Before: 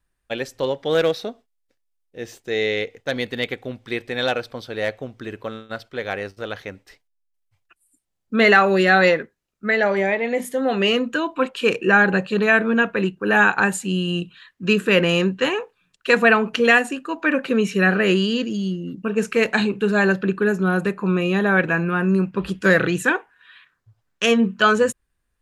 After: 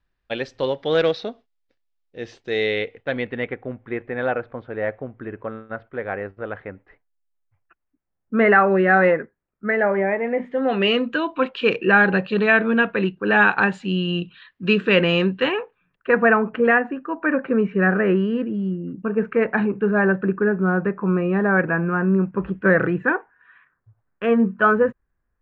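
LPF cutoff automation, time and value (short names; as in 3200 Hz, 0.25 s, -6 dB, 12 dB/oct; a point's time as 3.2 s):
LPF 24 dB/oct
2.53 s 4800 Hz
3.6 s 1900 Hz
10.32 s 1900 Hz
10.92 s 4000 Hz
15.37 s 4000 Hz
16.07 s 1800 Hz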